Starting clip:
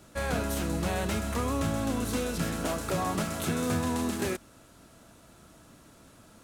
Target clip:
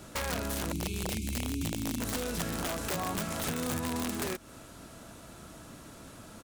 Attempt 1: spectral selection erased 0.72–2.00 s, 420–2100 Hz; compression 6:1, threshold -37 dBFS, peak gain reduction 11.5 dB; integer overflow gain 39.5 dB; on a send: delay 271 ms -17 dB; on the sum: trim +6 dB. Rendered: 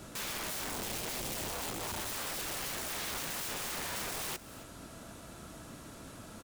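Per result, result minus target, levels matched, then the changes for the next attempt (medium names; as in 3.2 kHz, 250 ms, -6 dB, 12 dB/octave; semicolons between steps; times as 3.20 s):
integer overflow: distortion +35 dB; echo-to-direct +11.5 dB
change: integer overflow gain 32 dB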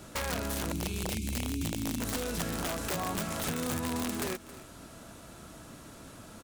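echo-to-direct +11.5 dB
change: delay 271 ms -28.5 dB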